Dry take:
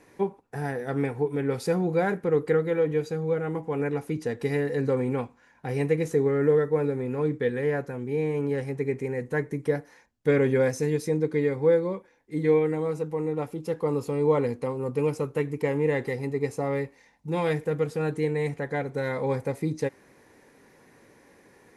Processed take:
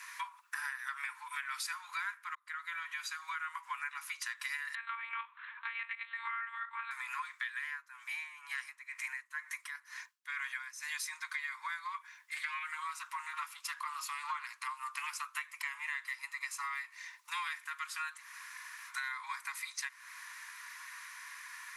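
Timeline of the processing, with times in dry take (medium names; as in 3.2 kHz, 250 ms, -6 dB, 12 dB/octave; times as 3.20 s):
2.35–3.38 s: fade in
4.75–6.91 s: monotone LPC vocoder at 8 kHz 230 Hz
7.64–11.02 s: logarithmic tremolo 2.1 Hz, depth 19 dB
11.85–15.35 s: loudspeaker Doppler distortion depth 0.16 ms
18.18–18.90 s: room tone, crossfade 0.06 s
whole clip: steep high-pass 1 kHz 96 dB/octave; compression 6:1, threshold -51 dBFS; trim +13.5 dB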